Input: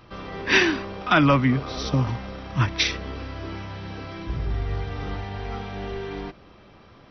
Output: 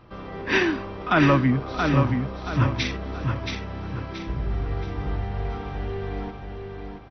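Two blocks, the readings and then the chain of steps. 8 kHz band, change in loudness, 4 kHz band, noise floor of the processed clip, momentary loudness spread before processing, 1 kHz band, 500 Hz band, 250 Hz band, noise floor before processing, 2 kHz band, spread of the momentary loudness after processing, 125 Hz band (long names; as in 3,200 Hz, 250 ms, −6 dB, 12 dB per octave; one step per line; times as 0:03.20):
can't be measured, −0.5 dB, −5.5 dB, −38 dBFS, 16 LU, −0.5 dB, +1.0 dB, +1.0 dB, −50 dBFS, −2.5 dB, 15 LU, +1.5 dB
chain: high-shelf EQ 2,500 Hz −10.5 dB
on a send: repeating echo 676 ms, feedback 37%, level −5 dB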